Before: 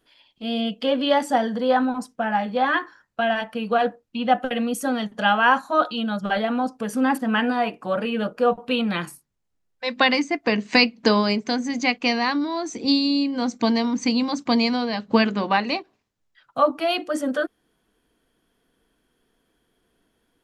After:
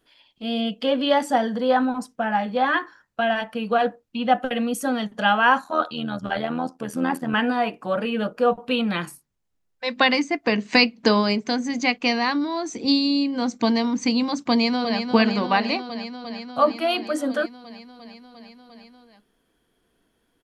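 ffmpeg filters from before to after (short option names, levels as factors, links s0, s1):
-filter_complex "[0:a]asettb=1/sr,asplit=3[s0][s1][s2];[s0]atrim=end=5.644[s3];[s1]atrim=start=5.64:end=7.34,asetpts=PTS-STARTPTS,afade=t=in:d=0.004:c=qsin,afade=t=out:st=1.696:d=0.004:c=qsin,tremolo=f=81:d=0.71[s4];[s2]atrim=start=7.336[s5];[s3][s4]acrossfade=d=0.004:c1=hsin:c2=qsin[s6];[s6][s5]acrossfade=d=0.004:c1=qsin:c2=hsin,asplit=2[s7][s8];[s8]afade=t=in:st=14.49:d=0.01,afade=t=out:st=15.1:d=0.01,aecho=0:1:350|700|1050|1400|1750|2100|2450|2800|3150|3500|3850|4200:0.446684|0.357347|0.285877|0.228702|0.182962|0.146369|0.117095|0.0936763|0.0749411|0.0599529|0.0479623|0.0383698[s9];[s7][s9]amix=inputs=2:normalize=0"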